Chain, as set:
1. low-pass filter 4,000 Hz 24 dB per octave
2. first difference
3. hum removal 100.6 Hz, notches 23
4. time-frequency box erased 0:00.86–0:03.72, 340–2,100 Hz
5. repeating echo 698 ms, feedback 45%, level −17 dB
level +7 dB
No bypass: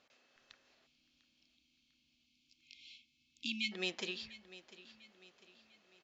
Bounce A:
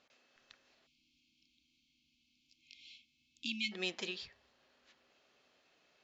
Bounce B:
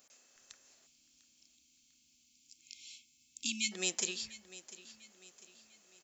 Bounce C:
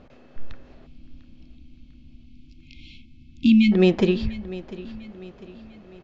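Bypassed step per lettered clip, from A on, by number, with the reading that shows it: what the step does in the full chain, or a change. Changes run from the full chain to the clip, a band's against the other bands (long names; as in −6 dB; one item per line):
5, echo-to-direct ratio −16.0 dB to none audible
1, 4 kHz band +2.5 dB
2, 4 kHz band −18.5 dB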